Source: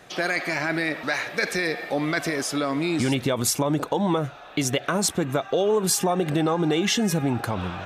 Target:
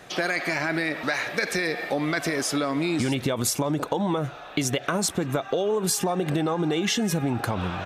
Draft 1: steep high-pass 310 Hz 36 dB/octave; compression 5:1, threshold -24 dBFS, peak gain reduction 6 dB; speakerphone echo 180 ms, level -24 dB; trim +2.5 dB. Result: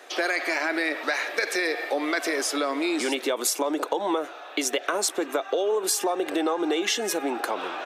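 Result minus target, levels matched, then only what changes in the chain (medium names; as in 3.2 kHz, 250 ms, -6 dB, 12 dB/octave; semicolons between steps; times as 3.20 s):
250 Hz band -3.0 dB
remove: steep high-pass 310 Hz 36 dB/octave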